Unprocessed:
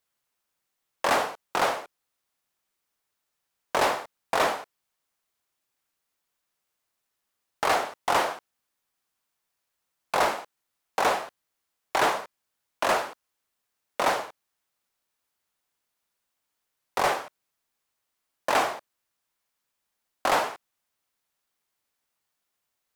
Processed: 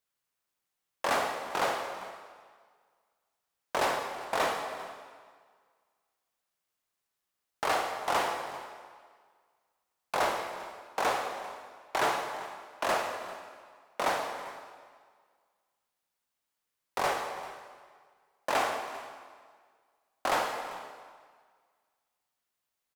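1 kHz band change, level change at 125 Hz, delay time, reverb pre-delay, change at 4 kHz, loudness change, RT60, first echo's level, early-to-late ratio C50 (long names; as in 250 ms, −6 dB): −4.0 dB, −4.0 dB, 394 ms, 36 ms, −4.0 dB, −5.5 dB, 1.7 s, −18.0 dB, 5.0 dB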